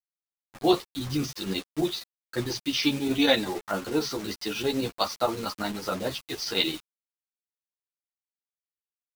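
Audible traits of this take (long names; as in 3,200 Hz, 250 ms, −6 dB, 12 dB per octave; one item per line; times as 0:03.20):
a quantiser's noise floor 6 bits, dither none
chopped level 11 Hz, depth 60%, duty 85%
a shimmering, thickened sound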